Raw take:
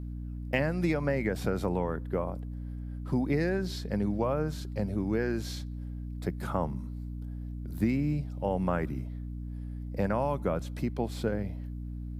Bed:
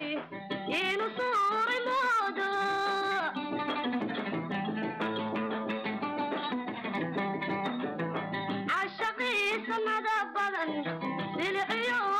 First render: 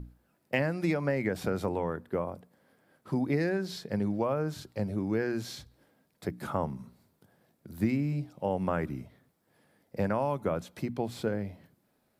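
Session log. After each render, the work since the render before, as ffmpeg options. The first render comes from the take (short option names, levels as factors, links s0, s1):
-af "bandreject=f=60:t=h:w=6,bandreject=f=120:t=h:w=6,bandreject=f=180:t=h:w=6,bandreject=f=240:t=h:w=6,bandreject=f=300:t=h:w=6"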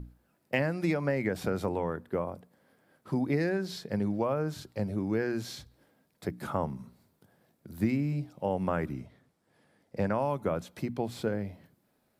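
-filter_complex "[0:a]asettb=1/sr,asplit=3[s0][s1][s2];[s0]atrim=end=8.934[s3];[s1]atrim=start=8.93:end=10.18,asetpts=PTS-STARTPTS,afade=t=in:d=0.004:c=qsin,afade=t=out:st=1.246:d=0.004:c=qsin,lowpass=9800[s4];[s2]atrim=start=10.176[s5];[s3][s4]acrossfade=d=0.004:c1=hsin:c2=qsin[s6];[s6][s5]acrossfade=d=0.004:c1=qsin:c2=hsin"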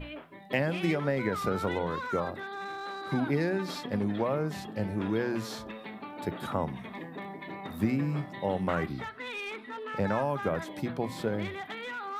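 -filter_complex "[1:a]volume=0.376[s0];[0:a][s0]amix=inputs=2:normalize=0"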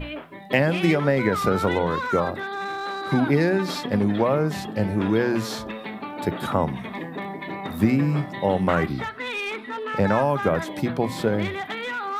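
-af "volume=2.66"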